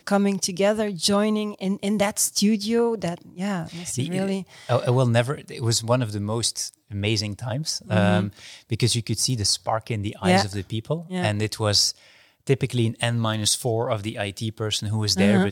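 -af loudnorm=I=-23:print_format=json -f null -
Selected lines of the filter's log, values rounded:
"input_i" : "-23.4",
"input_tp" : "-6.0",
"input_lra" : "1.6",
"input_thresh" : "-33.5",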